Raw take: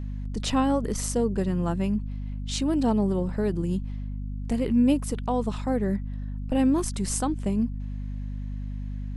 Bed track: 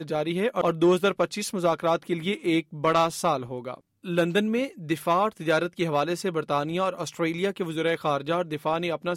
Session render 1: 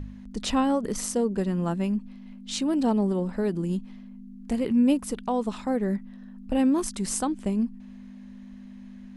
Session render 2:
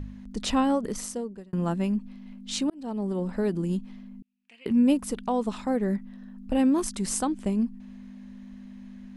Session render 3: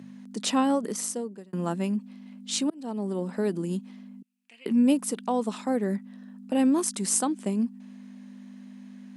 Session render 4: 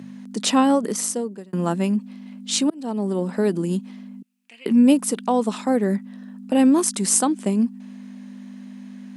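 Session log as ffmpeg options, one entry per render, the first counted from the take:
-af "bandreject=f=50:t=h:w=4,bandreject=f=100:t=h:w=4,bandreject=f=150:t=h:w=4"
-filter_complex "[0:a]asettb=1/sr,asplit=3[a][b][c];[a]atrim=end=4.224[d];[b]atrim=start=4.22:end=4.66,asetpts=PTS-STARTPTS,afade=t=in:d=0.004:c=qsin,afade=t=out:st=0.436:d=0.004:c=qsin,bandpass=f=2.6k:t=q:w=5.7[e];[c]atrim=start=4.656[f];[d][e]acrossfade=d=0.004:c1=hsin:c2=qsin[g];[g][f]acrossfade=d=0.004:c1=qsin:c2=hsin,asplit=3[h][i][j];[h]atrim=end=1.53,asetpts=PTS-STARTPTS,afade=t=out:st=0.73:d=0.8[k];[i]atrim=start=1.53:end=2.7,asetpts=PTS-STARTPTS,afade=t=in:d=0.004:c=hsin,afade=t=out:st=1.166:d=0.004:c=hsin[l];[j]atrim=start=2.7,asetpts=PTS-STARTPTS,afade=t=in:d=0.63[m];[k][l][m]concat=n=3:v=0:a=1"
-af "highpass=f=180:w=0.5412,highpass=f=180:w=1.3066,equalizer=f=9.2k:w=0.78:g=6"
-af "volume=6.5dB"

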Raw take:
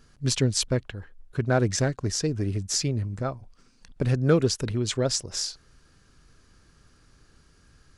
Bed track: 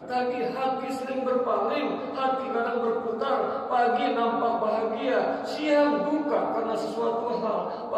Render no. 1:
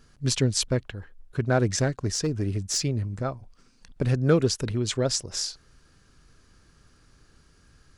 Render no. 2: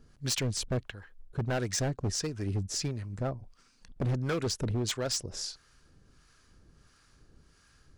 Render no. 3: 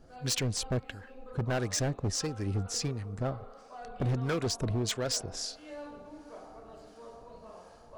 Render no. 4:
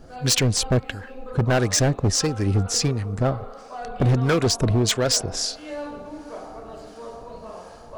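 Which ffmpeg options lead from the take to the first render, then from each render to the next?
-filter_complex "[0:a]asettb=1/sr,asplit=3[a][b][c];[a]atrim=end=2.104[d];[b]atrim=start=2.1:end=2.81,asetpts=PTS-STARTPTS,afade=t=in:d=0.004:c=qsin,afade=t=out:st=0.706:d=0.004:c=qsin,volume=19.5dB,asoftclip=hard,volume=-19.5dB[e];[c]atrim=start=2.806[f];[d][e]acrossfade=d=0.004:c1=hsin:c2=qsin[g];[g][f]acrossfade=d=0.004:c1=qsin:c2=hsin"
-filter_complex "[0:a]acrossover=split=740[a][b];[a]aeval=exprs='val(0)*(1-0.7/2+0.7/2*cos(2*PI*1.5*n/s))':c=same[c];[b]aeval=exprs='val(0)*(1-0.7/2-0.7/2*cos(2*PI*1.5*n/s))':c=same[d];[c][d]amix=inputs=2:normalize=0,asoftclip=type=hard:threshold=-26dB"
-filter_complex "[1:a]volume=-22.5dB[a];[0:a][a]amix=inputs=2:normalize=0"
-af "volume=11dB"

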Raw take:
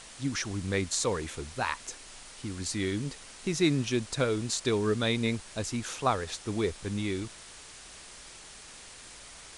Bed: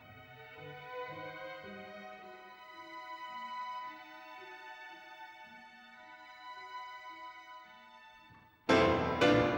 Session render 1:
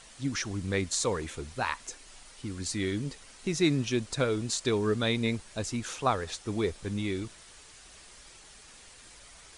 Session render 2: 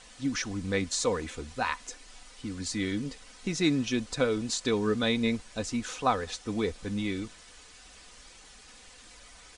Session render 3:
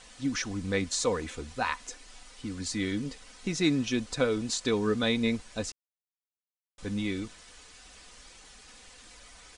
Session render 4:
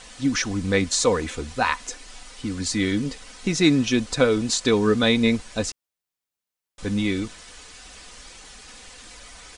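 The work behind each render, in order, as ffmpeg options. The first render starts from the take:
-af "afftdn=nr=6:nf=-49"
-af "lowpass=8.3k,aecho=1:1:4:0.46"
-filter_complex "[0:a]asplit=3[a][b][c];[a]atrim=end=5.72,asetpts=PTS-STARTPTS,afade=t=out:st=5.716:d=0.004:c=hsin[d];[b]atrim=start=5.72:end=6.78,asetpts=PTS-STARTPTS,volume=0[e];[c]atrim=start=6.78,asetpts=PTS-STARTPTS,afade=t=in:d=0.004:c=hsin[f];[d][e][f]concat=n=3:v=0:a=1"
-af "volume=8dB"

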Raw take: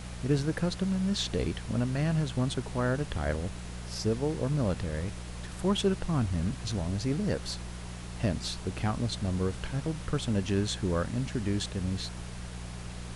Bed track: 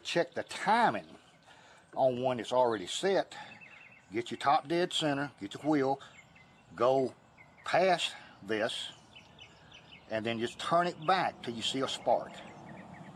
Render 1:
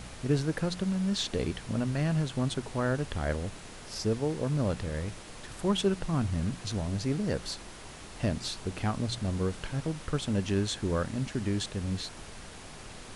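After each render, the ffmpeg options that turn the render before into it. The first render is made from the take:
-af "bandreject=f=60:t=h:w=4,bandreject=f=120:t=h:w=4,bandreject=f=180:t=h:w=4"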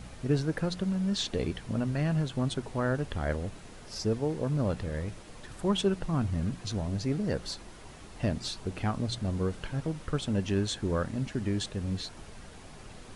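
-af "afftdn=nr=6:nf=-46"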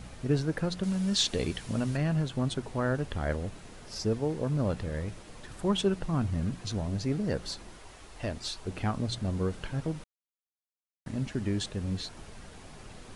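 -filter_complex "[0:a]asettb=1/sr,asplit=3[a][b][c];[a]atrim=end=0.834[d];[b]atrim=start=0.83:end=1.97,asetpts=PTS-STARTPTS,afade=t=in:d=0.004:c=qsin,afade=t=out:st=1.136:d=0.004:c=qsin,highshelf=f=2.7k:g=8.5[e];[c]atrim=start=1.966[f];[d][e]acrossfade=d=0.004:c1=hsin:c2=qsin[g];[g][f]acrossfade=d=0.004:c1=qsin:c2=hsin,asettb=1/sr,asplit=3[h][i][j];[h]atrim=end=7.784[k];[i]atrim=start=7.78:end=8.68,asetpts=PTS-STARTPTS,afade=t=in:d=0.004:c=qsin,afade=t=out:st=0.896:d=0.004:c=qsin,equalizer=f=170:t=o:w=1.6:g=-10[l];[j]atrim=start=8.676[m];[k][l]acrossfade=d=0.004:c1=hsin:c2=qsin[n];[n][m]acrossfade=d=0.004:c1=qsin:c2=hsin,asplit=3[o][p][q];[o]atrim=end=10.04,asetpts=PTS-STARTPTS,afade=t=out:st=10.036:d=0.004:c=hsin[r];[p]atrim=start=10.04:end=11.06,asetpts=PTS-STARTPTS,volume=0[s];[q]atrim=start=11.06,asetpts=PTS-STARTPTS,afade=t=in:d=0.004:c=hsin[t];[r][s][t]concat=n=3:v=0:a=1"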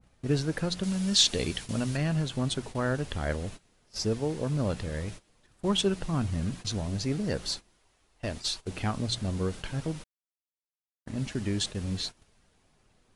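-af "agate=range=-19dB:threshold=-40dB:ratio=16:detection=peak,adynamicequalizer=threshold=0.00282:dfrequency=2200:dqfactor=0.7:tfrequency=2200:tqfactor=0.7:attack=5:release=100:ratio=0.375:range=3:mode=boostabove:tftype=highshelf"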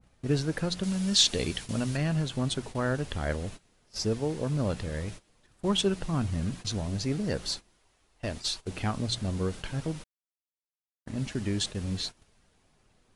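-af anull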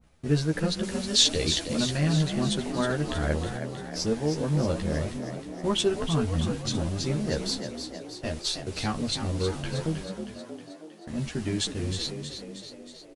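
-filter_complex "[0:a]asplit=2[a][b];[b]adelay=13,volume=-3dB[c];[a][c]amix=inputs=2:normalize=0,asplit=2[d][e];[e]asplit=8[f][g][h][i][j][k][l][m];[f]adelay=316,afreqshift=50,volume=-8dB[n];[g]adelay=632,afreqshift=100,volume=-12.4dB[o];[h]adelay=948,afreqshift=150,volume=-16.9dB[p];[i]adelay=1264,afreqshift=200,volume=-21.3dB[q];[j]adelay=1580,afreqshift=250,volume=-25.7dB[r];[k]adelay=1896,afreqshift=300,volume=-30.2dB[s];[l]adelay=2212,afreqshift=350,volume=-34.6dB[t];[m]adelay=2528,afreqshift=400,volume=-39.1dB[u];[n][o][p][q][r][s][t][u]amix=inputs=8:normalize=0[v];[d][v]amix=inputs=2:normalize=0"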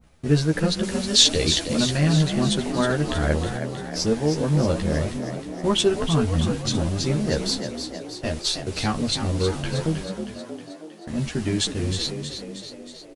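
-af "volume=5dB"

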